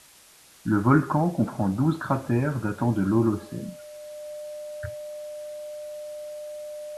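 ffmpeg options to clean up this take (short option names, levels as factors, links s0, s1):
-af "bandreject=f=600:w=30,afwtdn=0.0028"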